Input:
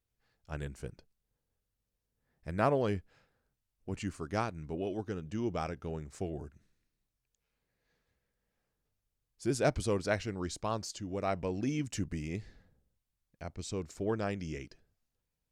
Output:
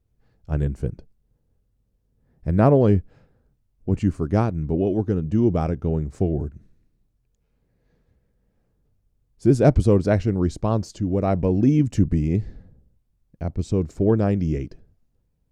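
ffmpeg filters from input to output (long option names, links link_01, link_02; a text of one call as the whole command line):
ffmpeg -i in.wav -af "tiltshelf=frequency=720:gain=9.5,volume=9dB" out.wav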